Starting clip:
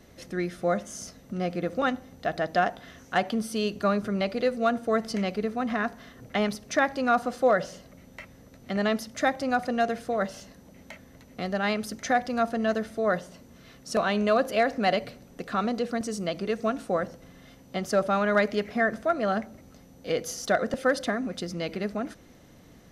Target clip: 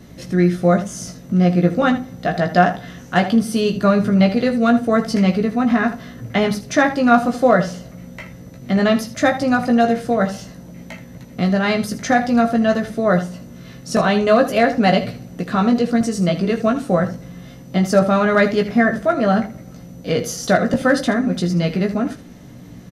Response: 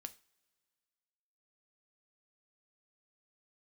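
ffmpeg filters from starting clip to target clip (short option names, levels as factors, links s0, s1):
-filter_complex "[0:a]equalizer=f=150:t=o:w=1.1:g=12.5,aecho=1:1:17|79:0.596|0.237,asplit=2[s0][s1];[1:a]atrim=start_sample=2205[s2];[s1][s2]afir=irnorm=-1:irlink=0,volume=3.16[s3];[s0][s3]amix=inputs=2:normalize=0,volume=0.75"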